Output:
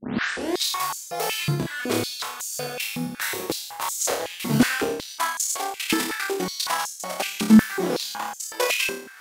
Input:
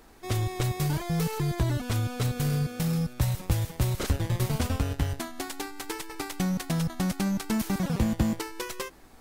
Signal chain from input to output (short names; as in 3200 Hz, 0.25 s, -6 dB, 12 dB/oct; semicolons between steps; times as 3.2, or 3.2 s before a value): tape start at the beginning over 0.55 s; in parallel at +1 dB: vocal rider within 4 dB 0.5 s; on the sum: tremolo 1.5 Hz, depth 60%; flutter echo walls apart 4.8 m, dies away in 0.59 s; stepped high-pass 5.4 Hz 230–6800 Hz